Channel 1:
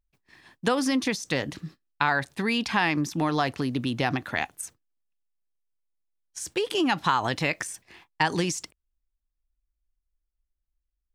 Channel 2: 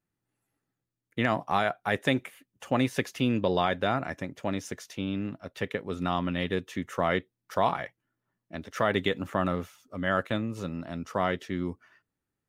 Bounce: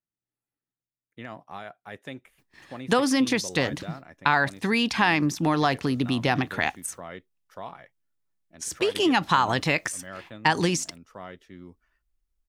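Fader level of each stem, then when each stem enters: +2.5 dB, -13.5 dB; 2.25 s, 0.00 s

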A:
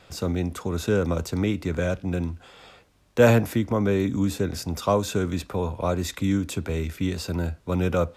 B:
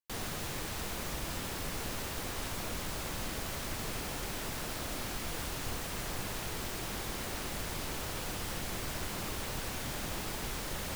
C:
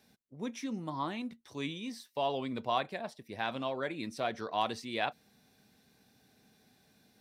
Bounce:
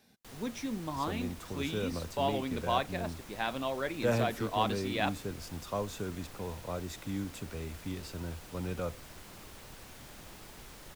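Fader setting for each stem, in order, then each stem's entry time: -13.0 dB, -12.0 dB, +1.0 dB; 0.85 s, 0.15 s, 0.00 s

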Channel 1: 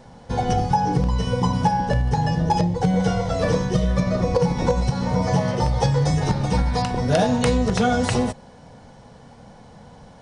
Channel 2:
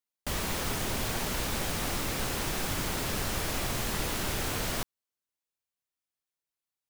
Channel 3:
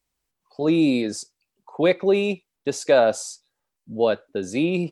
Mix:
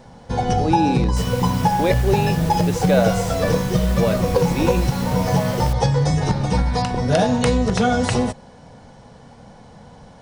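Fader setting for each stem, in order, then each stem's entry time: +1.5 dB, -2.5 dB, -2.0 dB; 0.00 s, 0.90 s, 0.00 s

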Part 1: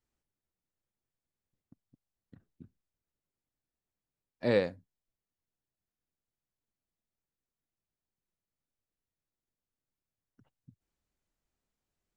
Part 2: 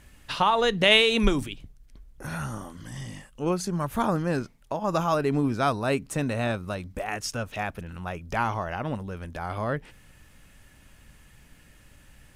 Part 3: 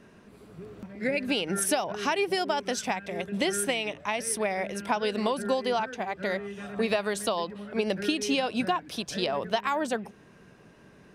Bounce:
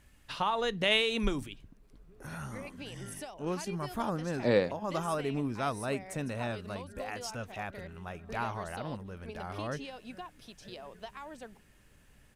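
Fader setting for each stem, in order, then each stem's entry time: +1.0 dB, -8.5 dB, -17.5 dB; 0.00 s, 0.00 s, 1.50 s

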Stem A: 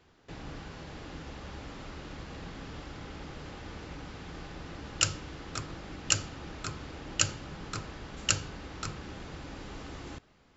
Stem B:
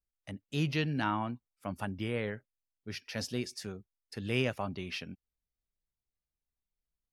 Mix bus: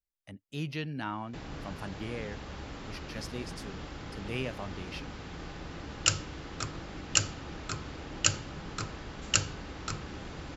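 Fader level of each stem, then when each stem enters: +1.0 dB, -4.5 dB; 1.05 s, 0.00 s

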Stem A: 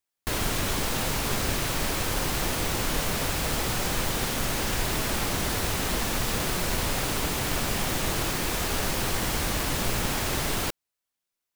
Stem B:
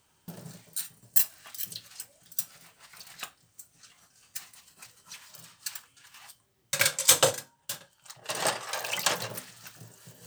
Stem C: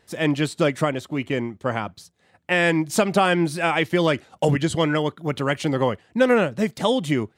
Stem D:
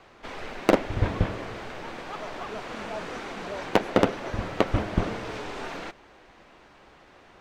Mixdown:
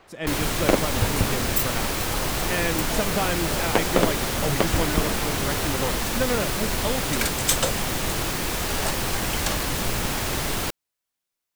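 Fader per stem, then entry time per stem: +1.5 dB, -3.0 dB, -8.0 dB, -0.5 dB; 0.00 s, 0.40 s, 0.00 s, 0.00 s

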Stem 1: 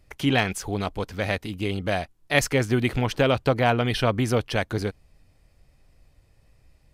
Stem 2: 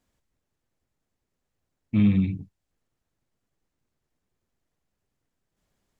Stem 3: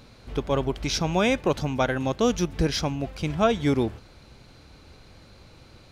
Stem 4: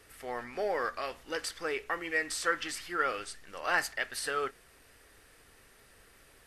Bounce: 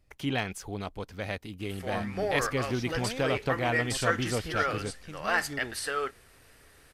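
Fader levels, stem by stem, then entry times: -8.5 dB, -17.5 dB, -17.5 dB, +1.5 dB; 0.00 s, 0.00 s, 1.85 s, 1.60 s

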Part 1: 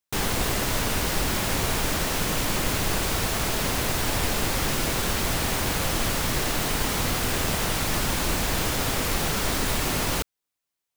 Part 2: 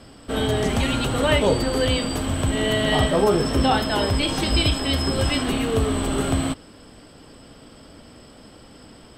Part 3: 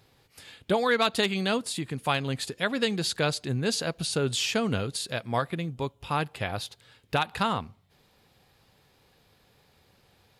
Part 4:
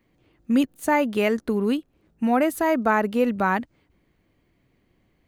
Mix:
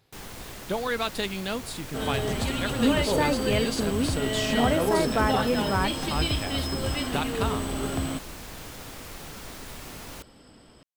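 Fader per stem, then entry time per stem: -15.5 dB, -7.0 dB, -4.5 dB, -5.0 dB; 0.00 s, 1.65 s, 0.00 s, 2.30 s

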